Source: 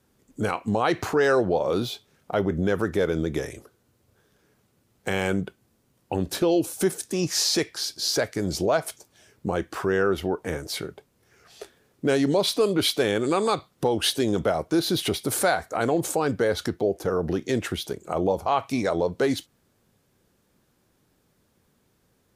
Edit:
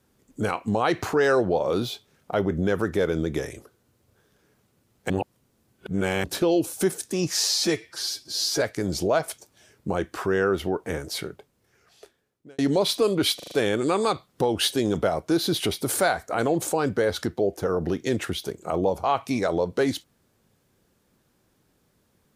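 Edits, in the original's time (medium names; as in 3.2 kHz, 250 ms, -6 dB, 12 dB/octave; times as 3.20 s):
5.10–6.24 s: reverse
7.37–8.20 s: stretch 1.5×
10.75–12.17 s: fade out
12.94 s: stutter 0.04 s, 5 plays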